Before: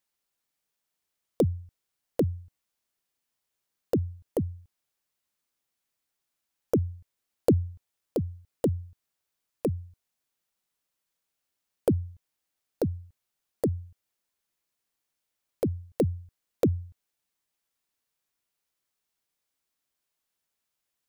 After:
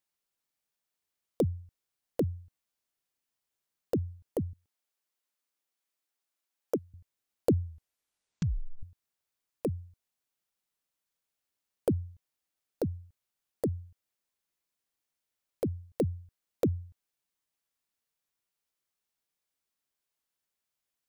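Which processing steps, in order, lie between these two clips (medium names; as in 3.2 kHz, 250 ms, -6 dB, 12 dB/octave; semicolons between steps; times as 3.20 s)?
4.53–6.94 s: high-pass 270 Hz 12 dB/octave; 7.63 s: tape stop 1.20 s; trim -4 dB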